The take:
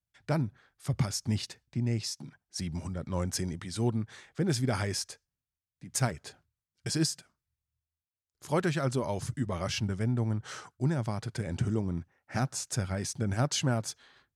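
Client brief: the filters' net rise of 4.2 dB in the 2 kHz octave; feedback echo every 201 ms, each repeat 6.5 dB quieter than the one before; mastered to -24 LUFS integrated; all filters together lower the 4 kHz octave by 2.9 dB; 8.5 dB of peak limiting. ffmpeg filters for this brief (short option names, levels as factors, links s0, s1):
-af "equalizer=f=2000:t=o:g=7,equalizer=f=4000:t=o:g=-6,alimiter=limit=0.0841:level=0:latency=1,aecho=1:1:201|402|603|804|1005|1206:0.473|0.222|0.105|0.0491|0.0231|0.0109,volume=2.82"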